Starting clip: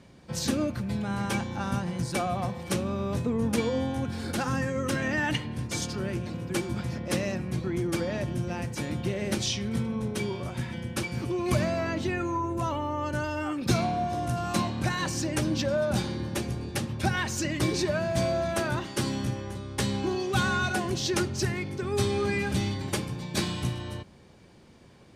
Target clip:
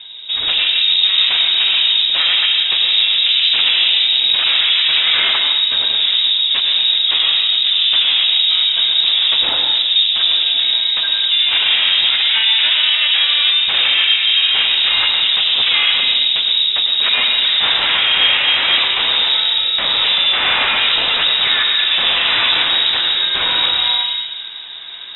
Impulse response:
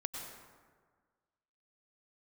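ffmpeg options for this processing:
-filter_complex "[0:a]asetnsamples=nb_out_samples=441:pad=0,asendcmd='17.62 equalizer g 3.5',equalizer=frequency=2400:width_type=o:width=0.96:gain=-10.5,aeval=exprs='0.2*sin(PI/2*5.62*val(0)/0.2)':channel_layout=same[link_01];[1:a]atrim=start_sample=2205[link_02];[link_01][link_02]afir=irnorm=-1:irlink=0,lowpass=frequency=3300:width_type=q:width=0.5098,lowpass=frequency=3300:width_type=q:width=0.6013,lowpass=frequency=3300:width_type=q:width=0.9,lowpass=frequency=3300:width_type=q:width=2.563,afreqshift=-3900,volume=2.5dB"

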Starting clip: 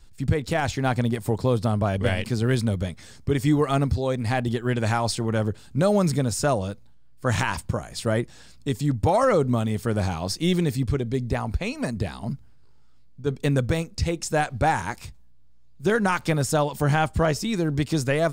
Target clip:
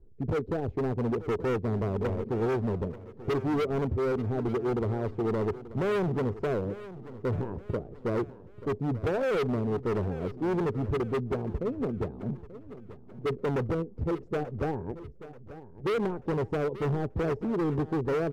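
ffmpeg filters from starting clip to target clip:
ffmpeg -i in.wav -af "lowpass=frequency=420:width_type=q:width=4.9,asoftclip=type=hard:threshold=-20dB,aecho=1:1:885|1770|2655|3540:0.168|0.0688|0.0282|0.0116,volume=-5.5dB" out.wav

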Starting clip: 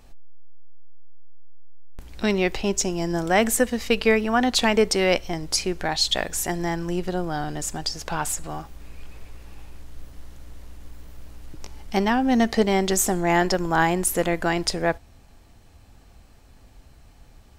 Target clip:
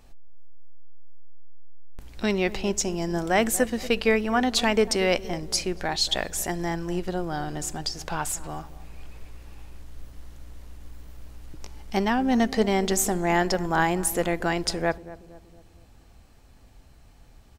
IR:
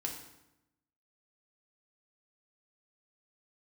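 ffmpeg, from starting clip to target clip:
-filter_complex "[0:a]asplit=2[link_01][link_02];[link_02]adelay=234,lowpass=frequency=870:poles=1,volume=-15dB,asplit=2[link_03][link_04];[link_04]adelay=234,lowpass=frequency=870:poles=1,volume=0.53,asplit=2[link_05][link_06];[link_06]adelay=234,lowpass=frequency=870:poles=1,volume=0.53,asplit=2[link_07][link_08];[link_08]adelay=234,lowpass=frequency=870:poles=1,volume=0.53,asplit=2[link_09][link_10];[link_10]adelay=234,lowpass=frequency=870:poles=1,volume=0.53[link_11];[link_01][link_03][link_05][link_07][link_09][link_11]amix=inputs=6:normalize=0,volume=-2.5dB"

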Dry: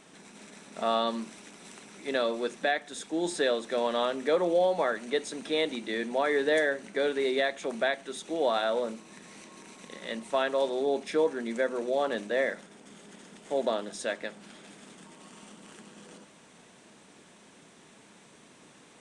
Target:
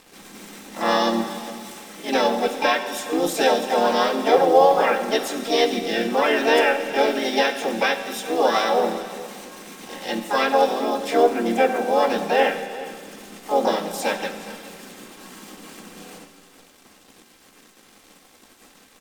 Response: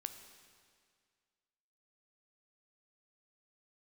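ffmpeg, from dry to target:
-filter_complex "[0:a]acrusher=bits=7:mix=0:aa=0.5,aecho=1:1:3.8:0.73,asplit=4[link_01][link_02][link_03][link_04];[link_02]asetrate=37084,aresample=44100,atempo=1.18921,volume=-7dB[link_05];[link_03]asetrate=58866,aresample=44100,atempo=0.749154,volume=-12dB[link_06];[link_04]asetrate=66075,aresample=44100,atempo=0.66742,volume=-3dB[link_07];[link_01][link_05][link_06][link_07]amix=inputs=4:normalize=0,aecho=1:1:415:0.126[link_08];[1:a]atrim=start_sample=2205[link_09];[link_08][link_09]afir=irnorm=-1:irlink=0,volume=7dB"

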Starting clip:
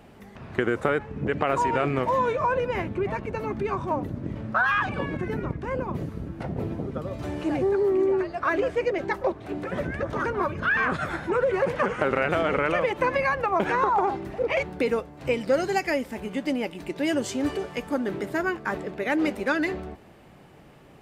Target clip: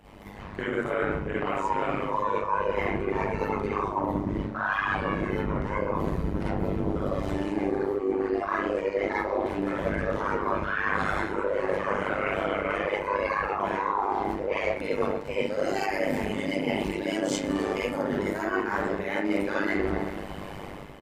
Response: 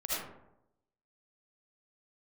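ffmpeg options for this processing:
-filter_complex "[0:a]dynaudnorm=framelen=130:gausssize=7:maxgain=11dB,aecho=1:1:128|256|384|512:0.106|0.0572|0.0309|0.0167[link_01];[1:a]atrim=start_sample=2205,asetrate=70560,aresample=44100[link_02];[link_01][link_02]afir=irnorm=-1:irlink=0,areverse,acompressor=threshold=-27dB:ratio=8,areverse,tremolo=f=100:d=0.857,volume=5.5dB"

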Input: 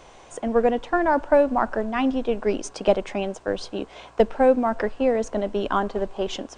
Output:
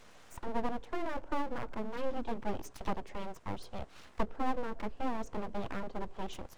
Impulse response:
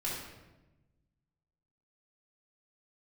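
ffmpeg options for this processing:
-filter_complex "[0:a]acrossover=split=420[link_01][link_02];[link_02]acompressor=threshold=-43dB:ratio=2[link_03];[link_01][link_03]amix=inputs=2:normalize=0,aeval=exprs='abs(val(0))':channel_layout=same,volume=-7dB"

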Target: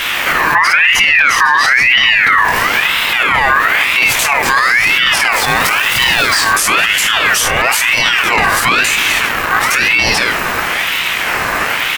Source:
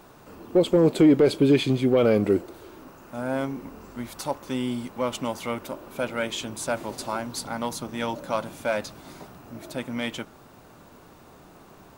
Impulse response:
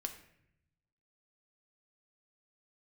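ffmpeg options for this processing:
-filter_complex "[0:a]aecho=1:1:50|78:0.316|0.168,asettb=1/sr,asplit=3[link_01][link_02][link_03];[link_01]atrim=end=5.324[link_04];[link_02]atrim=start=5.32:end=6.51,asetpts=PTS-STARTPTS,afade=type=in:duration=0.004:curve=qsin,afade=type=out:start_time=1.186:duration=0.004:curve=qsin,acrusher=bits=2:mode=log:mix=0:aa=0.000001[link_05];[link_03]atrim=start=6.506[link_06];[link_04][link_05]acrossfade=duration=0.004:curve1=hsin:curve2=qsin[link_07];[link_07][link_06]acrossfade=duration=0.004:curve1=qsin:curve2=hsin,acontrast=43,asettb=1/sr,asplit=3[link_08][link_09][link_10];[link_08]atrim=end=9.184[link_11];[link_09]atrim=start=9.18:end=9.6,asetpts=PTS-STARTPTS,afade=type=in:duration=0.004:curve=qsin,afade=type=out:start_time=0.416:duration=0.004:curve=qsin,aeval=exprs='0.0944*(cos(1*acos(clip(val(0)/0.0944,-1,1)))-cos(1*PI/2))+0.0211*(cos(5*acos(clip(val(0)/0.0944,-1,1)))-cos(5*PI/2))+0.0211*(cos(7*acos(clip(val(0)/0.0944,-1,1)))-cos(7*PI/2))':channel_layout=same[link_12];[link_10]atrim=start=9.596[link_13];[link_11][link_12]acrossfade=duration=0.004:curve1=hsin:curve2=qsin[link_14];[link_14][link_13]acrossfade=duration=0.004:curve1=qsin:curve2=hsin,flanger=delay=17.5:depth=7:speed=1.9,alimiter=level_in=34dB:limit=-1dB:release=50:level=0:latency=1,aeval=exprs='val(0)*sin(2*PI*1900*n/s+1900*0.3/1*sin(2*PI*1*n/s))':channel_layout=same"

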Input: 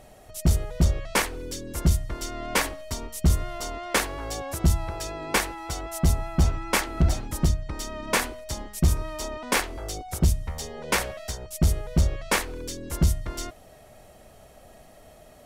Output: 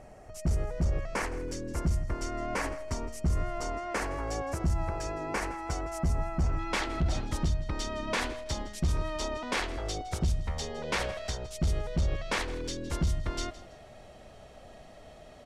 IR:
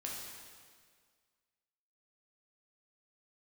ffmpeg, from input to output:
-af "lowpass=5900,alimiter=limit=-21dB:level=0:latency=1:release=29,asetnsamples=nb_out_samples=441:pad=0,asendcmd='6.59 equalizer g 2',equalizer=frequency=3600:width=2:gain=-13.5,aecho=1:1:163|326:0.133|0.036"

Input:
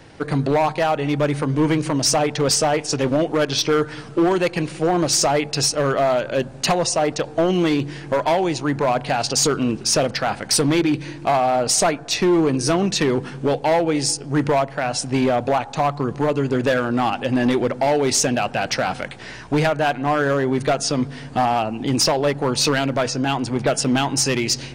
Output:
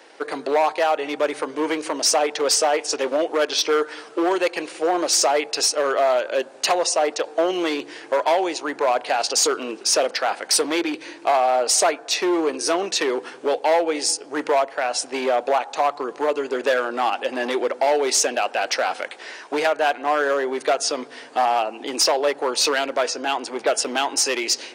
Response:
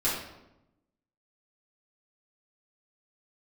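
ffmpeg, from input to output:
-af "highpass=frequency=370:width=0.5412,highpass=frequency=370:width=1.3066"

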